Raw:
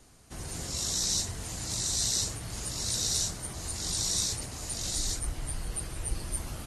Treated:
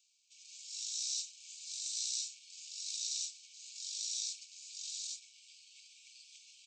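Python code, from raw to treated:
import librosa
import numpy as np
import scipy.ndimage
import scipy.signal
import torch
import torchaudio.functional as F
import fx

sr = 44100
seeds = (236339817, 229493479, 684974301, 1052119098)

y = scipy.signal.medfilt(x, 5)
y = fx.brickwall_bandpass(y, sr, low_hz=2200.0, high_hz=8300.0)
y = np.diff(y, prepend=0.0)
y = F.gain(torch.from_numpy(y), -1.0).numpy()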